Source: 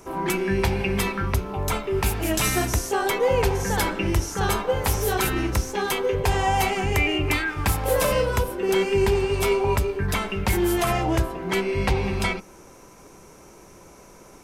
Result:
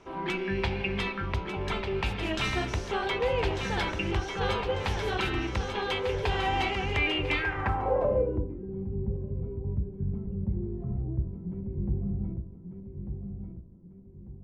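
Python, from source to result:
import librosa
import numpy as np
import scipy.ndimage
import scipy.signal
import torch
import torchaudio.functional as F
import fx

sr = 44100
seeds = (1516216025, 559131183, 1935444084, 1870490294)

y = fx.echo_feedback(x, sr, ms=1195, feedback_pct=36, wet_db=-7)
y = fx.filter_sweep_lowpass(y, sr, from_hz=3400.0, to_hz=180.0, start_s=7.3, end_s=8.66, q=1.8)
y = F.gain(torch.from_numpy(y), -7.5).numpy()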